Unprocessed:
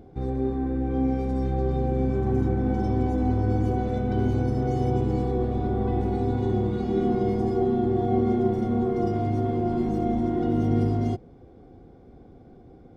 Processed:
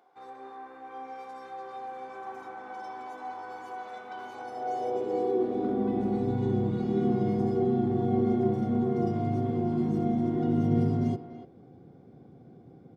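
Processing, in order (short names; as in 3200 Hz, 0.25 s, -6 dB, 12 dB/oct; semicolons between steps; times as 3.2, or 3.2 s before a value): high-pass sweep 1000 Hz -> 140 Hz, 4.27–6.37; speakerphone echo 0.29 s, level -10 dB; gain -5 dB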